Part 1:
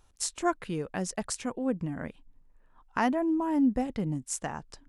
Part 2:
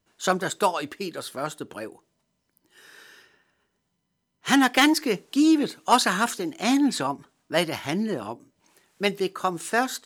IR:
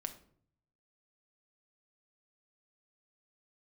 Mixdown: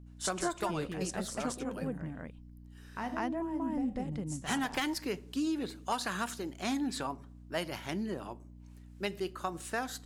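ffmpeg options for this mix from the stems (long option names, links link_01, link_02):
-filter_complex "[0:a]agate=range=-9dB:threshold=-50dB:ratio=16:detection=peak,volume=-3.5dB,asplit=3[link_01][link_02][link_03];[link_02]volume=-6.5dB[link_04];[link_03]volume=-4dB[link_05];[1:a]aeval=exprs='val(0)+0.01*(sin(2*PI*60*n/s)+sin(2*PI*2*60*n/s)/2+sin(2*PI*3*60*n/s)/3+sin(2*PI*4*60*n/s)/4+sin(2*PI*5*60*n/s)/5)':channel_layout=same,volume=-12dB,asplit=3[link_06][link_07][link_08];[link_07]volume=-7dB[link_09];[link_08]apad=whole_len=215403[link_10];[link_01][link_10]sidechaingate=range=-33dB:threshold=-42dB:ratio=16:detection=peak[link_11];[2:a]atrim=start_sample=2205[link_12];[link_04][link_09]amix=inputs=2:normalize=0[link_13];[link_13][link_12]afir=irnorm=-1:irlink=0[link_14];[link_05]aecho=0:1:197:1[link_15];[link_11][link_06][link_14][link_15]amix=inputs=4:normalize=0,acompressor=threshold=-29dB:ratio=6"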